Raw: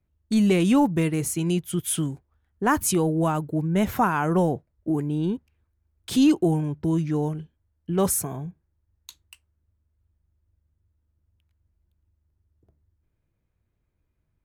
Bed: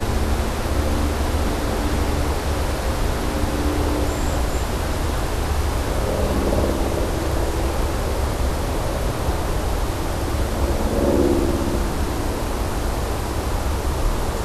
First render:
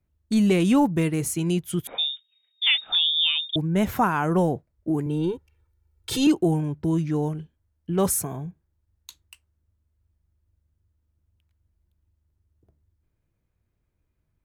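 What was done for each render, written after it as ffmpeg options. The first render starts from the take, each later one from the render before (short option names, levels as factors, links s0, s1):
-filter_complex "[0:a]asettb=1/sr,asplit=3[s0][s1][s2];[s0]atrim=end=1.874[s3];[s1]atrim=start=1.87:end=3.56,asetpts=PTS-STARTPTS,afade=t=in:d=0.004:c=qsin,afade=t=out:st=1.686:d=0.004:c=qsin,lowpass=f=3200:t=q:w=0.5098,lowpass=f=3200:t=q:w=0.6013,lowpass=f=3200:t=q:w=0.9,lowpass=f=3200:t=q:w=2.563,afreqshift=-3800[s4];[s2]atrim=start=3.556[s5];[s3][s4]acrossfade=d=0.004:c1=hsin:c2=qsin[s6];[s6][s5]acrossfade=d=0.004:c1=qsin:c2=hsin,asettb=1/sr,asplit=3[s7][s8][s9];[s7]atrim=end=5.064[s10];[s8]atrim=start=5.06:end=6.27,asetpts=PTS-STARTPTS,afade=t=in:d=0.004:c=qsin,afade=t=out:st=1.206:d=0.004:c=qsin,aecho=1:1:2.2:0.94,atrim=end_sample=53361[s11];[s9]atrim=start=6.266[s12];[s10][s11]acrossfade=d=0.004:c1=hsin:c2=qsin[s13];[s13][s12]acrossfade=d=0.004:c1=qsin:c2=hsin"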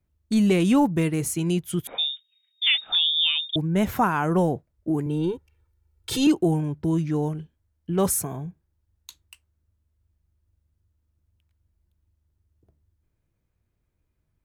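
-filter_complex "[0:a]asplit=3[s0][s1][s2];[s0]afade=t=out:st=2.14:d=0.02[s3];[s1]highpass=1400,afade=t=in:st=2.14:d=0.02,afade=t=out:st=2.72:d=0.02[s4];[s2]afade=t=in:st=2.72:d=0.02[s5];[s3][s4][s5]amix=inputs=3:normalize=0"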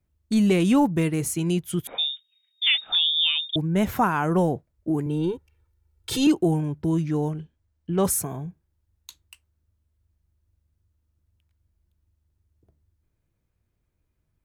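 -filter_complex "[0:a]asettb=1/sr,asplit=3[s0][s1][s2];[s0]atrim=end=7.304[s3];[s1]atrim=start=7.3:end=8.05,asetpts=PTS-STARTPTS,afade=t=in:d=0.004:c=qsin,afade=t=out:st=0.746:d=0.004:c=qsin,equalizer=f=13000:t=o:w=0.55:g=-14[s4];[s2]atrim=start=8.046[s5];[s3][s4]acrossfade=d=0.004:c1=hsin:c2=qsin[s6];[s6][s5]acrossfade=d=0.004:c1=qsin:c2=hsin"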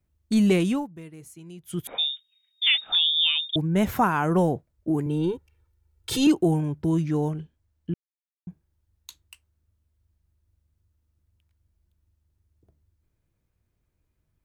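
-filter_complex "[0:a]asplit=5[s0][s1][s2][s3][s4];[s0]atrim=end=0.87,asetpts=PTS-STARTPTS,afade=t=out:st=0.55:d=0.32:silence=0.112202[s5];[s1]atrim=start=0.87:end=1.58,asetpts=PTS-STARTPTS,volume=0.112[s6];[s2]atrim=start=1.58:end=7.94,asetpts=PTS-STARTPTS,afade=t=in:d=0.32:silence=0.112202,afade=t=out:st=6.356:d=0.004:c=hsin[s7];[s3]atrim=start=7.94:end=8.47,asetpts=PTS-STARTPTS,volume=0[s8];[s4]atrim=start=8.47,asetpts=PTS-STARTPTS,afade=t=in:d=0.004:c=hsin[s9];[s5][s6][s7][s8][s9]concat=n=5:v=0:a=1"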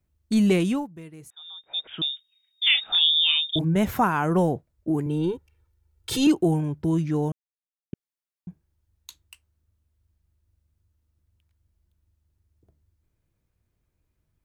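-filter_complex "[0:a]asettb=1/sr,asplit=3[s0][s1][s2];[s0]atrim=end=1.304[s3];[s1]atrim=start=1.3:end=2.02,asetpts=PTS-STARTPTS,afade=t=in:d=0.004:c=qsin,afade=t=out:st=0.716:d=0.004:c=qsin,lowpass=f=3200:t=q:w=0.5098,lowpass=f=3200:t=q:w=0.6013,lowpass=f=3200:t=q:w=0.9,lowpass=f=3200:t=q:w=2.563,afreqshift=-3800[s4];[s2]atrim=start=2.016[s5];[s3][s4]acrossfade=d=0.004:c1=hsin:c2=qsin[s6];[s6][s5]acrossfade=d=0.004:c1=qsin:c2=hsin,asettb=1/sr,asplit=3[s7][s8][s9];[s7]atrim=end=2.634[s10];[s8]atrim=start=2.63:end=3.76,asetpts=PTS-STARTPTS,afade=t=in:d=0.004:c=qsin,afade=t=out:st=1.126:d=0.004:c=qsin,asplit=2[s11][s12];[s12]adelay=31,volume=0.531[s13];[s11][s13]amix=inputs=2:normalize=0,atrim=end_sample=49833[s14];[s9]atrim=start=3.756[s15];[s10][s14]acrossfade=d=0.004:c1=hsin:c2=qsin[s16];[s16][s15]acrossfade=d=0.004:c1=qsin:c2=hsin,asplit=3[s17][s18][s19];[s17]atrim=end=7.32,asetpts=PTS-STARTPTS,afade=t=out:st=7.316:d=0.004:c=hsin[s20];[s18]atrim=start=7.32:end=7.93,asetpts=PTS-STARTPTS,volume=0[s21];[s19]atrim=start=7.93,asetpts=PTS-STARTPTS,afade=t=in:d=0.004:c=hsin[s22];[s20][s21][s22]concat=n=3:v=0:a=1"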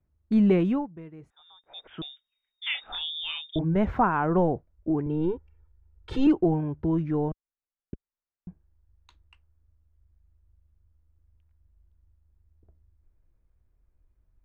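-af "lowpass=1600,asubboost=boost=6:cutoff=52"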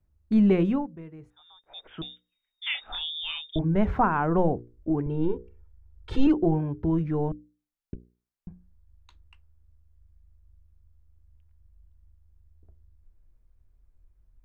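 -af "lowshelf=f=69:g=8.5,bandreject=f=60:t=h:w=6,bandreject=f=120:t=h:w=6,bandreject=f=180:t=h:w=6,bandreject=f=240:t=h:w=6,bandreject=f=300:t=h:w=6,bandreject=f=360:t=h:w=6,bandreject=f=420:t=h:w=6,bandreject=f=480:t=h:w=6,bandreject=f=540:t=h:w=6"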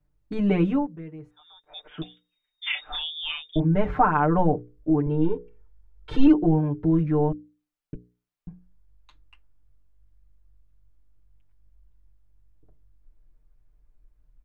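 -af "bass=f=250:g=-2,treble=f=4000:g=-5,aecho=1:1:6.7:0.98"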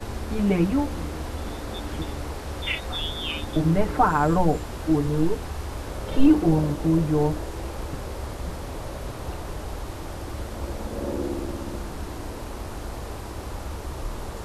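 -filter_complex "[1:a]volume=0.282[s0];[0:a][s0]amix=inputs=2:normalize=0"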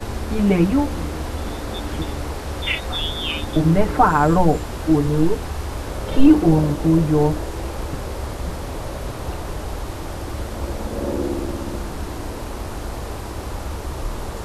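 -af "volume=1.78,alimiter=limit=0.794:level=0:latency=1"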